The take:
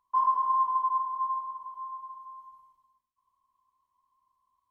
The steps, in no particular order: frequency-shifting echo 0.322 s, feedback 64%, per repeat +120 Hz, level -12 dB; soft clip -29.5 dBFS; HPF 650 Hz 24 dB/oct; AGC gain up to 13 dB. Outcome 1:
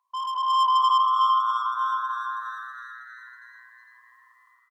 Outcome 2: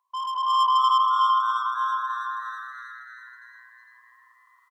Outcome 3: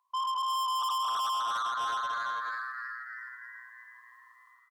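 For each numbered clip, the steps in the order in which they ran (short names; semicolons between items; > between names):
HPF > soft clip > AGC > frequency-shifting echo; HPF > soft clip > frequency-shifting echo > AGC; AGC > frequency-shifting echo > HPF > soft clip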